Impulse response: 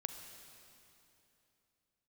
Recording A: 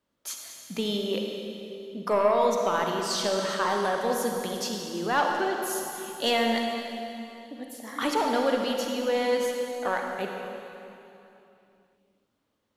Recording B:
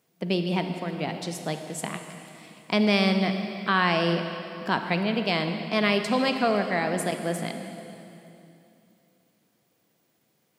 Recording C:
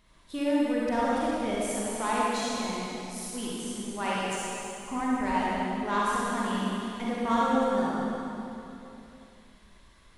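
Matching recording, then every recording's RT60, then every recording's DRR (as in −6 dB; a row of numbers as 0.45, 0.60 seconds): B; 3.0, 3.0, 3.0 seconds; 1.0, 6.5, −7.5 decibels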